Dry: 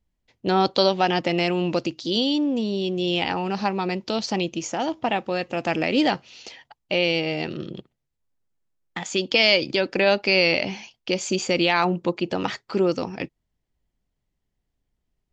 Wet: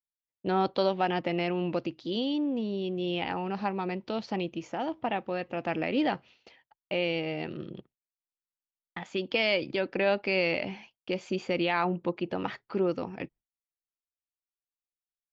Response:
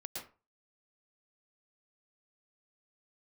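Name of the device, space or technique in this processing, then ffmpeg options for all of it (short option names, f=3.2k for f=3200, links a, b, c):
hearing-loss simulation: -af "lowpass=2.7k,agate=range=-33dB:threshold=-40dB:ratio=3:detection=peak,volume=-6.5dB"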